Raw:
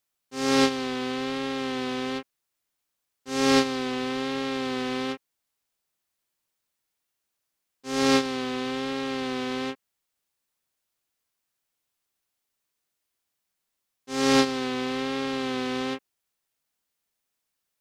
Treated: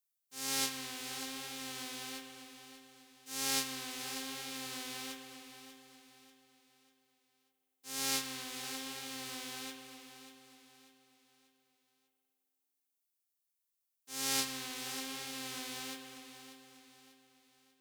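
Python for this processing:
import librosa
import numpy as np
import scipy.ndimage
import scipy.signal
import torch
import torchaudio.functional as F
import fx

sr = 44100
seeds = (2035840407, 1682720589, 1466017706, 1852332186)

p1 = fx.envelope_flatten(x, sr, power=0.6)
p2 = librosa.effects.preemphasis(p1, coef=0.8, zi=[0.0])
p3 = p2 + fx.echo_feedback(p2, sr, ms=591, feedback_pct=41, wet_db=-12, dry=0)
p4 = fx.rev_spring(p3, sr, rt60_s=2.6, pass_ms=(53,), chirp_ms=75, drr_db=7.0)
y = p4 * 10.0 ** (-6.0 / 20.0)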